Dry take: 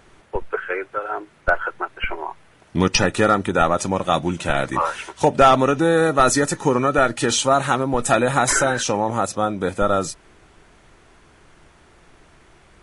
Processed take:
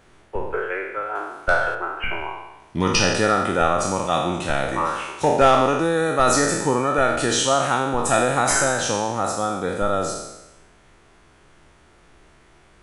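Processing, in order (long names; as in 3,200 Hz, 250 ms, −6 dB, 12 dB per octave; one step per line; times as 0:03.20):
peak hold with a decay on every bin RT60 1.00 s
0:01.15–0:01.75: high-shelf EQ 2,800 Hz +11 dB
level −4.5 dB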